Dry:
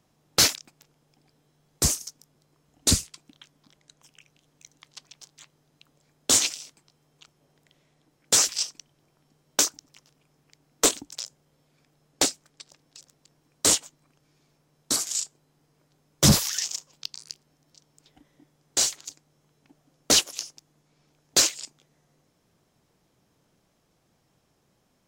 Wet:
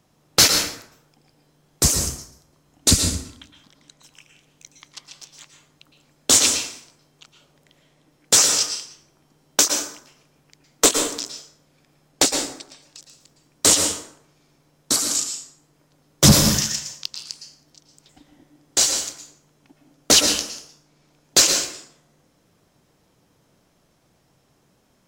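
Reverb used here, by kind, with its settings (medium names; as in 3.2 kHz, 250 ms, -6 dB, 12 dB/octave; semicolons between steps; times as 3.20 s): plate-style reverb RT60 0.7 s, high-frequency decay 0.65×, pre-delay 100 ms, DRR 4 dB; trim +5 dB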